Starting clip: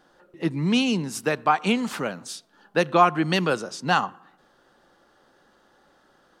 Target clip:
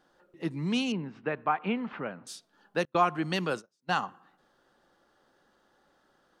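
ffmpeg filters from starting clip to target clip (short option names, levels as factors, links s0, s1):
-filter_complex "[0:a]asettb=1/sr,asplit=3[s0][s1][s2];[s0]atrim=end=0.924[s3];[s1]atrim=start=0.92:end=2.27,asetpts=PTS-STARTPTS,afade=t=in:d=0.004:c=qsin,afade=t=out:st=1.346:d=0.004:c=qsin,lowpass=f=2600:w=0.5412,lowpass=f=2600:w=1.3066[s4];[s2]atrim=start=2.266[s5];[s3][s4]acrossfade=d=0.004:c1=hsin:c2=qsin[s6];[s6][s5]acrossfade=d=0.004:c1=qsin:c2=hsin,asettb=1/sr,asplit=3[s7][s8][s9];[s7]atrim=end=2.854[s10];[s8]atrim=start=2.85:end=4.01,asetpts=PTS-STARTPTS,afade=t=in:d=0.004:c=qsin,afade=t=out:st=1.156:d=0.004:c=qsin,agate=range=0.02:threshold=0.0501:ratio=16:detection=peak[s11];[s9]atrim=start=4.006[s12];[s10][s11]acrossfade=d=0.004:c1=hsin:c2=qsin[s13];[s13][s12]acrossfade=d=0.004:c1=qsin:c2=hsin,volume=0.422"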